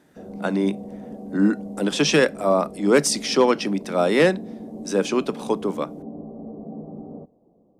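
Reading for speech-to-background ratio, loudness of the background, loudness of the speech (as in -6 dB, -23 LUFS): 15.0 dB, -36.5 LUFS, -21.5 LUFS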